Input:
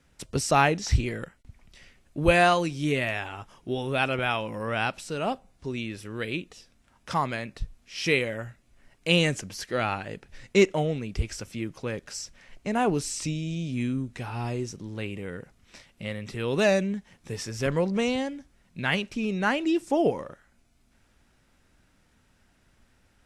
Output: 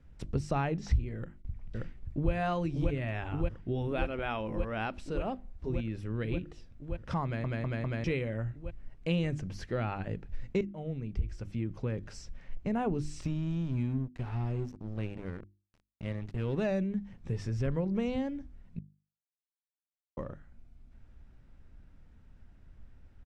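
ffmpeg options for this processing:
ffmpeg -i in.wav -filter_complex "[0:a]asplit=2[link_01][link_02];[link_02]afade=type=in:start_time=1.16:duration=0.01,afade=type=out:start_time=2.32:duration=0.01,aecho=0:1:580|1160|1740|2320|2900|3480|4060|4640|5220|5800|6380|6960:0.668344|0.534675|0.42774|0.342192|0.273754|0.219003|0.175202|0.140162|0.11213|0.0897036|0.0717629|0.0574103[link_03];[link_01][link_03]amix=inputs=2:normalize=0,asettb=1/sr,asplit=3[link_04][link_05][link_06];[link_04]atrim=end=3.874[link_07];[link_05]atrim=start=3.87:end=5.7,asetpts=PTS-STARTPTS,afade=type=in:duration=0.004:curve=qsin,afade=type=out:start_time=1.826:duration=0.004:curve=qsin,equalizer=frequency=130:width=2.5:gain=-14.5[link_08];[link_06]atrim=start=5.696[link_09];[link_07][link_08]acrossfade=duration=0.004:curve1=hsin:curve2=qsin[link_10];[link_10][link_09]acrossfade=duration=0.004:curve1=qsin:curve2=hsin,asettb=1/sr,asplit=3[link_11][link_12][link_13];[link_11]atrim=end=13.214[link_14];[link_12]atrim=start=13.21:end=16.65,asetpts=PTS-STARTPTS,afade=type=in:duration=0.004:curve=qsin,afade=type=out:start_time=3.436:duration=0.004:curve=qsin,aeval=exprs='sgn(val(0))*max(abs(val(0))-0.0106,0)':channel_layout=same[link_15];[link_13]atrim=start=16.646[link_16];[link_14][link_15]acrossfade=duration=0.004:curve1=hsin:curve2=qsin[link_17];[link_17][link_16]acrossfade=duration=0.004:curve1=qsin:curve2=hsin,asplit=8[link_18][link_19][link_20][link_21][link_22][link_23][link_24][link_25];[link_18]atrim=end=7.442[link_26];[link_19]atrim=start=7.238:end=7.442[link_27];[link_20]atrim=start=7.238:end=7.442[link_28];[link_21]atrim=start=7.238:end=7.442[link_29];[link_22]atrim=start=8.038:end=10.61,asetpts=PTS-STARTPTS,afade=type=out:start_time=2.568:duration=0.004:curve=hsin:silence=0.11885[link_30];[link_23]atrim=start=10.61:end=18.79,asetpts=PTS-STARTPTS,afade=type=in:duration=1.23:silence=0.11885,afade=type=out:start_time=8.176:duration=0.004:curve=hsin[link_31];[link_24]atrim=start=18.79:end=20.17,asetpts=PTS-STARTPTS,volume=0[link_32];[link_25]atrim=start=20.17,asetpts=PTS-STARTPTS,afade=type=in:duration=0.004:curve=hsin[link_33];[link_26][link_27]acrossfade=duration=0.004:curve1=hsin:curve2=hsin[link_34];[link_34][link_28]acrossfade=duration=0.004:curve1=hsin:curve2=hsin[link_35];[link_35][link_29]acrossfade=duration=0.004:curve1=hsin:curve2=hsin[link_36];[link_30][link_31][link_32][link_33]concat=n=4:v=0:a=1[link_37];[link_36][link_37]acrossfade=duration=0.004:curve1=hsin:curve2=hsin,aemphasis=mode=reproduction:type=riaa,bandreject=frequency=50:width_type=h:width=6,bandreject=frequency=100:width_type=h:width=6,bandreject=frequency=150:width_type=h:width=6,bandreject=frequency=200:width_type=h:width=6,bandreject=frequency=250:width_type=h:width=6,bandreject=frequency=300:width_type=h:width=6,bandreject=frequency=350:width_type=h:width=6,acompressor=threshold=-26dB:ratio=2.5,volume=-4.5dB" out.wav

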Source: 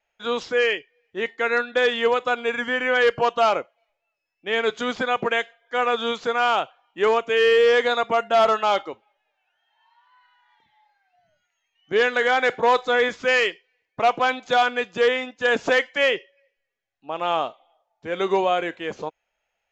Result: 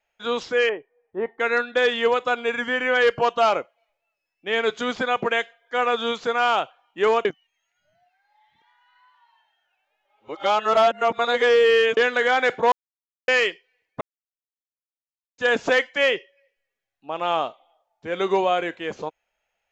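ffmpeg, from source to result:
ffmpeg -i in.wav -filter_complex "[0:a]asettb=1/sr,asplit=3[link_01][link_02][link_03];[link_01]atrim=end=0.694[link_04];[link_02]atrim=start=0.69:end=1.4,asetpts=PTS-STARTPTS,afade=type=in:duration=0.004:curve=qsin,afade=type=out:start_time=0.706:duration=0.004:curve=qsin,lowpass=frequency=920:width_type=q:width=1.9[link_05];[link_03]atrim=start=1.396[link_06];[link_04][link_05]acrossfade=duration=0.004:curve1=hsin:curve2=qsin[link_07];[link_07][link_06]acrossfade=duration=0.004:curve1=qsin:curve2=hsin,asplit=7[link_08][link_09][link_10][link_11][link_12][link_13][link_14];[link_08]atrim=end=7.252[link_15];[link_09]atrim=start=7.248:end=11.972,asetpts=PTS-STARTPTS,areverse[link_16];[link_10]atrim=start=11.968:end=12.72,asetpts=PTS-STARTPTS,afade=type=out:start_time=0.748:duration=0.004:curve=hsin[link_17];[link_11]atrim=start=12.72:end=13.28,asetpts=PTS-STARTPTS,volume=0[link_18];[link_12]atrim=start=13.28:end=14.01,asetpts=PTS-STARTPTS,afade=type=in:duration=0.004:curve=hsin,afade=type=out:start_time=0.726:duration=0.004:curve=hsin[link_19];[link_13]atrim=start=14.01:end=15.38,asetpts=PTS-STARTPTS,volume=0[link_20];[link_14]atrim=start=15.38,asetpts=PTS-STARTPTS,afade=type=in:duration=0.004:curve=hsin[link_21];[link_15][link_16]acrossfade=duration=0.004:curve1=hsin:curve2=hsin[link_22];[link_17][link_18][link_19][link_20][link_21]concat=n=5:v=0:a=1[link_23];[link_22][link_23]acrossfade=duration=0.004:curve1=hsin:curve2=hsin" out.wav

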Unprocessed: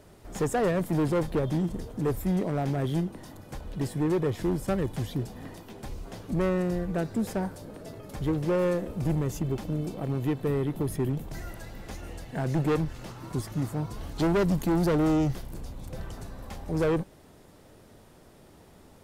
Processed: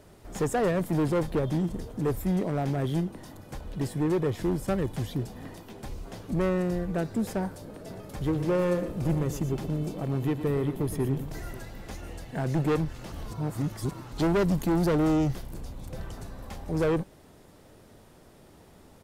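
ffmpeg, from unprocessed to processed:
ffmpeg -i in.wav -filter_complex "[0:a]asplit=3[link_01][link_02][link_03];[link_01]afade=type=out:start_time=7.89:duration=0.02[link_04];[link_02]aecho=1:1:118|541:0.282|0.133,afade=type=in:start_time=7.89:duration=0.02,afade=type=out:start_time=11.62:duration=0.02[link_05];[link_03]afade=type=in:start_time=11.62:duration=0.02[link_06];[link_04][link_05][link_06]amix=inputs=3:normalize=0,asplit=3[link_07][link_08][link_09];[link_07]atrim=end=13.122[link_10];[link_08]atrim=start=13.118:end=14.122,asetpts=PTS-STARTPTS,areverse[link_11];[link_09]atrim=start=14.118[link_12];[link_10][link_11]acrossfade=duration=0.004:curve1=hsin:curve2=hsin[link_13];[link_13][link_12]acrossfade=duration=0.004:curve1=hsin:curve2=hsin" out.wav

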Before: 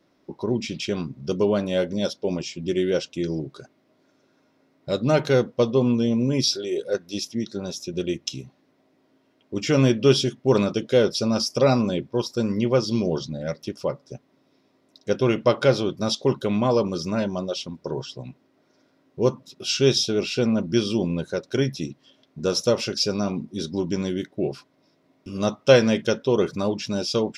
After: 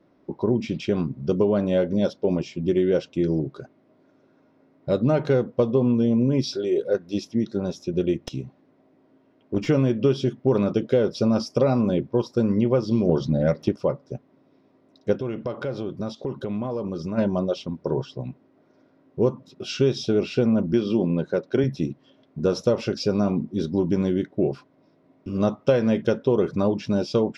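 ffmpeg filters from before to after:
ffmpeg -i in.wav -filter_complex "[0:a]asettb=1/sr,asplit=3[link_01][link_02][link_03];[link_01]atrim=end=8.254[link_04];[link_02]atrim=start=8.25:end=9.68,asetpts=PTS-STARTPTS,afade=type=in:duration=0.004:curve=qsin,afade=type=out:start_time=1.426:duration=0.004:curve=qsin,aeval=exprs='clip(val(0),-1,0.0596)':channel_layout=same[link_05];[link_03]atrim=start=9.676[link_06];[link_04][link_05]acrossfade=duration=0.004:curve1=hsin:curve2=qsin[link_07];[link_07][link_06]acrossfade=duration=0.004:curve1=qsin:curve2=hsin,asplit=3[link_08][link_09][link_10];[link_08]afade=type=out:start_time=15.18:duration=0.02[link_11];[link_09]acompressor=threshold=-30dB:ratio=5:attack=3.2:release=140:knee=1:detection=peak,afade=type=in:start_time=15.18:duration=0.02,afade=type=out:start_time=17.17:duration=0.02[link_12];[link_10]afade=type=in:start_time=17.17:duration=0.02[link_13];[link_11][link_12][link_13]amix=inputs=3:normalize=0,asettb=1/sr,asplit=3[link_14][link_15][link_16];[link_14]atrim=end=20.734[link_17];[link_15]atrim=start=20.73:end=21.64,asetpts=PTS-STARTPTS,afade=type=in:duration=0.004:curve=qsin,afade=type=out:start_time=0.906:duration=0.004:curve=qsin,highpass=140,lowpass=5600[link_18];[link_16]atrim=start=21.636[link_19];[link_17][link_18]acrossfade=duration=0.004:curve1=hsin:curve2=qsin[link_20];[link_20][link_19]acrossfade=duration=0.004:curve1=qsin:curve2=hsin,asplit=3[link_21][link_22][link_23];[link_21]atrim=end=13.092[link_24];[link_22]atrim=start=13.088:end=13.762,asetpts=PTS-STARTPTS,volume=6.5dB[link_25];[link_23]atrim=start=13.758[link_26];[link_24][link_25]acrossfade=duration=0.004:curve1=hsin:curve2=hsin[link_27];[link_27][link_26]acrossfade=duration=0.004:curve1=hsin:curve2=hsin,lowpass=frequency=1000:poles=1,acompressor=threshold=-21dB:ratio=6,volume=5dB" out.wav

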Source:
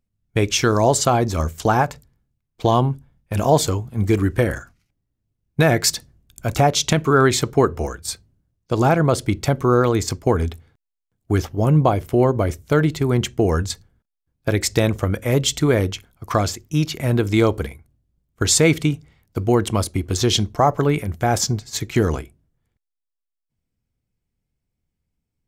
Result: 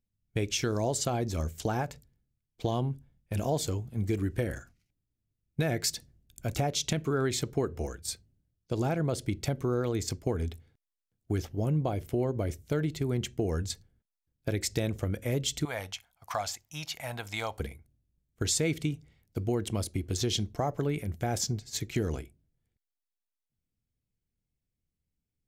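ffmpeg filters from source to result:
ffmpeg -i in.wav -filter_complex "[0:a]asettb=1/sr,asplit=3[link_01][link_02][link_03];[link_01]atrim=end=15.654[link_04];[link_02]atrim=start=15.65:end=17.6,asetpts=PTS-STARTPTS,afade=type=in:duration=0.004:curve=qsin,afade=type=out:start_time=1.946:duration=0.004:curve=qsin,lowshelf=frequency=540:width_type=q:width=3:gain=-13.5[link_05];[link_03]atrim=start=17.596[link_06];[link_04][link_05]acrossfade=duration=0.004:curve1=hsin:curve2=qsin[link_07];[link_07][link_06]acrossfade=duration=0.004:curve1=qsin:curve2=hsin,equalizer=frequency=1100:width_type=o:width=1:gain=-8.5,acompressor=threshold=-21dB:ratio=2,volume=-7.5dB" out.wav

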